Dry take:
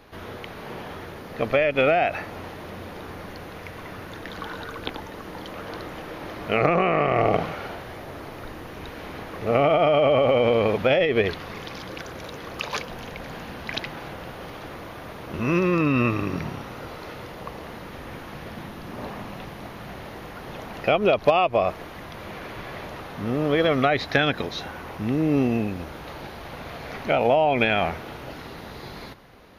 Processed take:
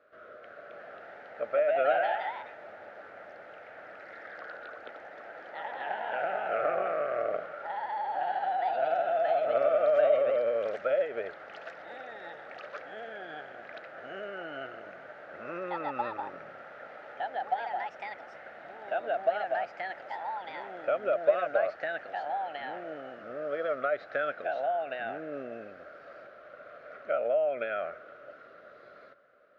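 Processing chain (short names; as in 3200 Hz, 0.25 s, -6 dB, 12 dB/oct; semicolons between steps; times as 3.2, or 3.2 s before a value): double band-pass 900 Hz, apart 1.2 oct; echoes that change speed 0.315 s, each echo +2 st, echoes 3; gain -3 dB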